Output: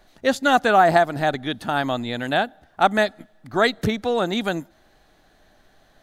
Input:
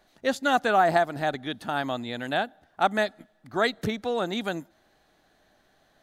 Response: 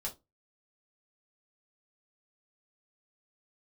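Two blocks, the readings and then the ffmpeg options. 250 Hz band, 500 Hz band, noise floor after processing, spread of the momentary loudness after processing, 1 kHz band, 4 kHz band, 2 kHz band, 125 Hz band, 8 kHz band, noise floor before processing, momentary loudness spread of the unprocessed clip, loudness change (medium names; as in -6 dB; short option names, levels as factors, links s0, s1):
+6.0 dB, +5.5 dB, -58 dBFS, 11 LU, +5.5 dB, +5.5 dB, +5.5 dB, +7.0 dB, +5.5 dB, -65 dBFS, 12 LU, +5.5 dB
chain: -af "lowshelf=f=61:g=11.5,volume=1.88"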